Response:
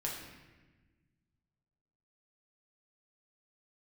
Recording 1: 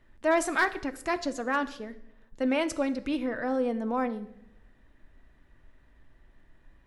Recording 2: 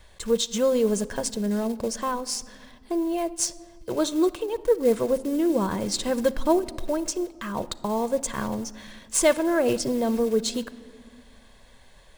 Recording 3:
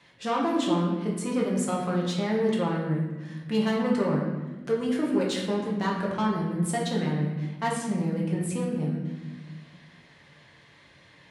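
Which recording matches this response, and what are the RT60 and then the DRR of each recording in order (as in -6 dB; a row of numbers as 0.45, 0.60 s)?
3; 0.85, 2.0, 1.2 s; 9.0, 14.0, -3.5 dB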